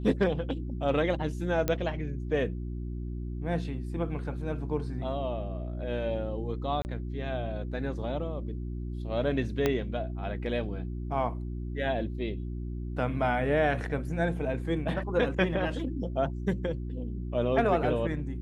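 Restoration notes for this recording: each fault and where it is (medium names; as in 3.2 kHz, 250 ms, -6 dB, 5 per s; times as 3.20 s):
hum 60 Hz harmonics 6 -35 dBFS
1.68 s: pop -13 dBFS
6.82–6.85 s: dropout 29 ms
9.66 s: pop -12 dBFS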